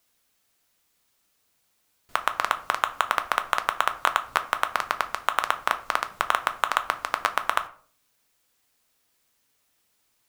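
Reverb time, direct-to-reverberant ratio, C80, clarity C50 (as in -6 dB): 0.50 s, 8.5 dB, 19.0 dB, 15.5 dB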